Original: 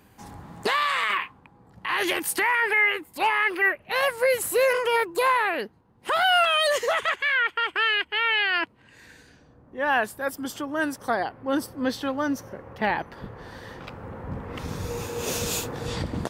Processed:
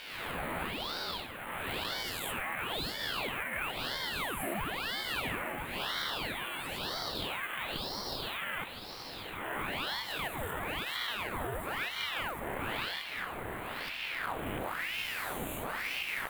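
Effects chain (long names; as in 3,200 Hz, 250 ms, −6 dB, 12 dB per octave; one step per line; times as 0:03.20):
peak hold with a rise ahead of every peak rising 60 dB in 1.43 s
0:06.32–0:08.42: Bessel high-pass filter 1,700 Hz, order 2
downward compressor 10 to 1, threshold −30 dBFS, peak gain reduction 16 dB
echo with a time of its own for lows and highs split 2,500 Hz, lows 147 ms, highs 630 ms, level −13 dB
log-companded quantiser 4 bits
Butterworth band-reject 5,300 Hz, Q 0.81
feedback delay with all-pass diffusion 771 ms, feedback 65%, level −10 dB
ring modulator whose carrier an LFO sweeps 1,400 Hz, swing 90%, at 1 Hz
level −1 dB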